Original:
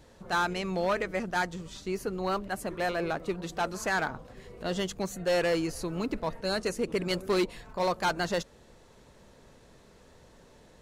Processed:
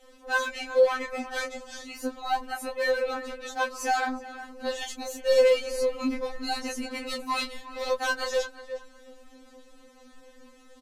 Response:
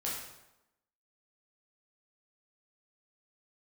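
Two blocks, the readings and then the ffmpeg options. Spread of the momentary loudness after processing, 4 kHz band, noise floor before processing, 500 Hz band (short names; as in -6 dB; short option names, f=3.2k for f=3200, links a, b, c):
13 LU, +2.5 dB, -57 dBFS, +4.5 dB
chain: -filter_complex "[0:a]asplit=2[a][b];[b]adelay=361,lowpass=f=2.4k:p=1,volume=-13dB,asplit=2[c][d];[d]adelay=361,lowpass=f=2.4k:p=1,volume=0.25,asplit=2[e][f];[f]adelay=361,lowpass=f=2.4k:p=1,volume=0.25[g];[a][c][e][g]amix=inputs=4:normalize=0,flanger=delay=19.5:depth=3:speed=2.4,afftfilt=real='re*3.46*eq(mod(b,12),0)':imag='im*3.46*eq(mod(b,12),0)':win_size=2048:overlap=0.75,volume=8dB"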